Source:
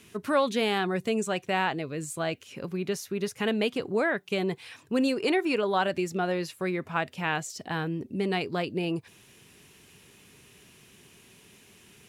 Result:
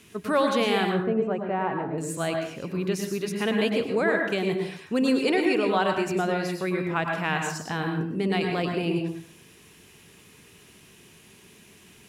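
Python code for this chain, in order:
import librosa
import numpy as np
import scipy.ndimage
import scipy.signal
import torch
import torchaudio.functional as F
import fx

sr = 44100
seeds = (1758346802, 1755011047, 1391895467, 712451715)

y = fx.lowpass(x, sr, hz=1100.0, slope=12, at=(0.91, 1.98))
y = fx.rev_plate(y, sr, seeds[0], rt60_s=0.54, hf_ratio=0.6, predelay_ms=90, drr_db=2.5)
y = y * librosa.db_to_amplitude(1.0)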